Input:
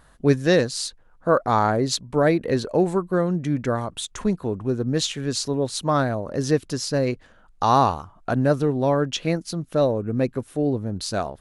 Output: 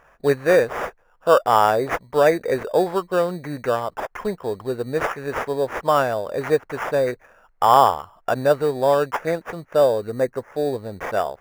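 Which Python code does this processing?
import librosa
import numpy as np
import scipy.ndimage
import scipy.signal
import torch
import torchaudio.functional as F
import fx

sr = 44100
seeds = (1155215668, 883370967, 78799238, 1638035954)

y = fx.sample_hold(x, sr, seeds[0], rate_hz=4200.0, jitter_pct=0)
y = fx.spec_box(y, sr, start_s=10.1, length_s=0.42, low_hz=2200.0, high_hz=4800.0, gain_db=-6)
y = fx.band_shelf(y, sr, hz=940.0, db=13.0, octaves=2.7)
y = y * librosa.db_to_amplitude(-8.0)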